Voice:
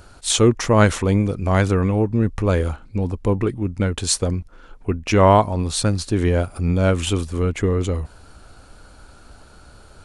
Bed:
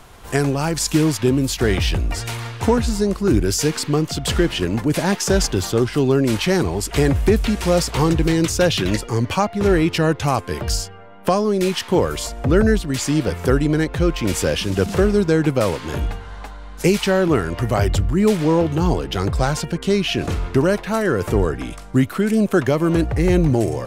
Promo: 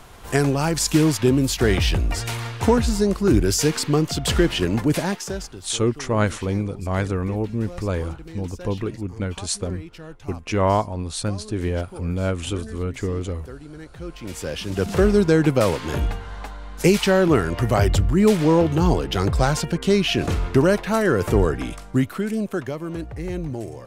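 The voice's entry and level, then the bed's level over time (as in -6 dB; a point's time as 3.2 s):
5.40 s, -6.0 dB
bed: 4.91 s -0.5 dB
5.69 s -22 dB
13.7 s -22 dB
15.07 s 0 dB
21.66 s 0 dB
22.84 s -12.5 dB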